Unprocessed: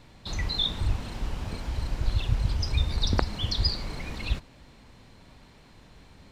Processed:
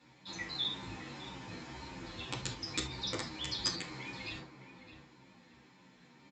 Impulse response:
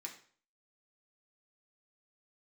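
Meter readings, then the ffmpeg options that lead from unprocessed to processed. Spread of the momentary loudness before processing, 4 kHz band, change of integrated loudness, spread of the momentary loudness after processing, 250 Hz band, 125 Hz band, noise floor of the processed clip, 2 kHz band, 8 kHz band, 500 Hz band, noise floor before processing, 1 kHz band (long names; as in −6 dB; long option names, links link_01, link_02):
9 LU, −7.0 dB, −9.5 dB, 18 LU, −7.0 dB, −18.0 dB, −62 dBFS, −3.5 dB, +0.5 dB, −7.5 dB, −53 dBFS, −7.0 dB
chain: -filter_complex "[0:a]aeval=exprs='val(0)+0.00355*(sin(2*PI*60*n/s)+sin(2*PI*2*60*n/s)/2+sin(2*PI*3*60*n/s)/3+sin(2*PI*4*60*n/s)/4+sin(2*PI*5*60*n/s)/5)':channel_layout=same,highpass=45,bandreject=frequency=60:width_type=h:width=6,bandreject=frequency=120:width_type=h:width=6,asplit=2[link_01][link_02];[link_02]adelay=612,lowpass=frequency=1700:poles=1,volume=-9dB,asplit=2[link_03][link_04];[link_04]adelay=612,lowpass=frequency=1700:poles=1,volume=0.26,asplit=2[link_05][link_06];[link_06]adelay=612,lowpass=frequency=1700:poles=1,volume=0.26[link_07];[link_01][link_03][link_05][link_07]amix=inputs=4:normalize=0,aresample=16000,aeval=exprs='(mod(5.96*val(0)+1,2)-1)/5.96':channel_layout=same,aresample=44100[link_08];[1:a]atrim=start_sample=2205,afade=type=out:start_time=0.13:duration=0.01,atrim=end_sample=6174[link_09];[link_08][link_09]afir=irnorm=-1:irlink=0,asplit=2[link_10][link_11];[link_11]adelay=10,afreqshift=-1.8[link_12];[link_10][link_12]amix=inputs=2:normalize=1,volume=1dB"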